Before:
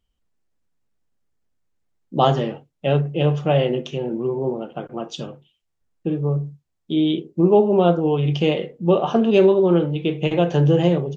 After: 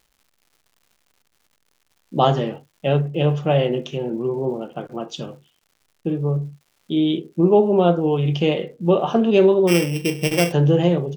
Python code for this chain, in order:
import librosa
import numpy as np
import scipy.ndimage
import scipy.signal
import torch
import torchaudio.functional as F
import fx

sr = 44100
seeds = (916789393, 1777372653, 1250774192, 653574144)

y = fx.sample_sort(x, sr, block=16, at=(9.67, 10.51), fade=0.02)
y = fx.dmg_crackle(y, sr, seeds[0], per_s=220.0, level_db=-47.0)